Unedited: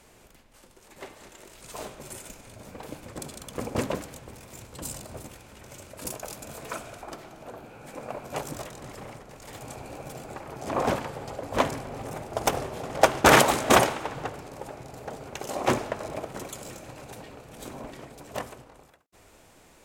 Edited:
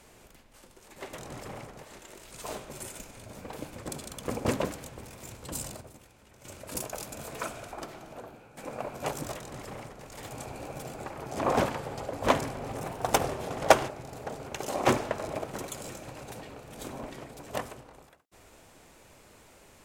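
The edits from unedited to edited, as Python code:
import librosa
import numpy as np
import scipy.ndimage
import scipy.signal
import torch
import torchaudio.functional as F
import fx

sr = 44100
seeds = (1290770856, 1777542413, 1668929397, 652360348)

y = fx.edit(x, sr, fx.clip_gain(start_s=5.11, length_s=0.64, db=-9.5),
    fx.fade_out_to(start_s=7.36, length_s=0.51, floor_db=-10.5),
    fx.duplicate(start_s=8.65, length_s=0.7, to_s=1.13),
    fx.speed_span(start_s=12.17, length_s=0.27, speed=1.12),
    fx.cut(start_s=13.21, length_s=1.48), tone=tone)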